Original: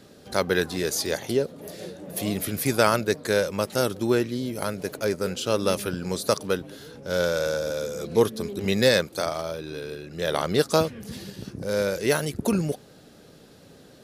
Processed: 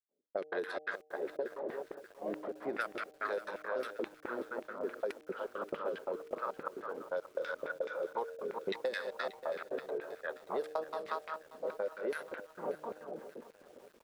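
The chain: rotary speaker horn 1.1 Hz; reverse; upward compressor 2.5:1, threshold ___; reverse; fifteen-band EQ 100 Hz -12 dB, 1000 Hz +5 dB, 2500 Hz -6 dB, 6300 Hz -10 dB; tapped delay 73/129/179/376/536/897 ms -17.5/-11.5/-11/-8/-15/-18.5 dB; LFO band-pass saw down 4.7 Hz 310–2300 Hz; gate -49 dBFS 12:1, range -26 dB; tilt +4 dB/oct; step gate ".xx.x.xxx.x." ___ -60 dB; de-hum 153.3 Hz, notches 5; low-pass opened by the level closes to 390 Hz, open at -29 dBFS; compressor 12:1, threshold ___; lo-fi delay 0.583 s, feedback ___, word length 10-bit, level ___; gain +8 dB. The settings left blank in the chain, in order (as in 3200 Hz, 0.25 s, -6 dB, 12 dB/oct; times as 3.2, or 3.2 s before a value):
-31 dBFS, 173 bpm, -41 dBFS, 55%, -14 dB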